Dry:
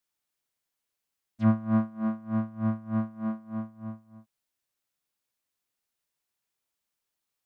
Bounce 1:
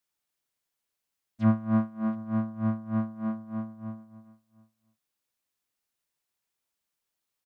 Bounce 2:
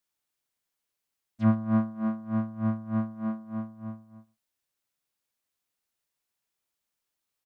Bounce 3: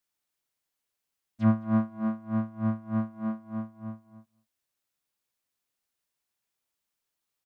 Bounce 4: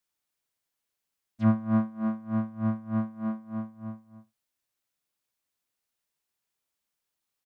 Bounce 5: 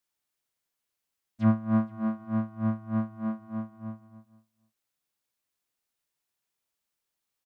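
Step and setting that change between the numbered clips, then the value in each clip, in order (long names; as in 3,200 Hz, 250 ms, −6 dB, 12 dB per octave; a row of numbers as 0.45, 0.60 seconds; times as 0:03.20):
single-tap delay, delay time: 718, 118, 212, 78, 470 milliseconds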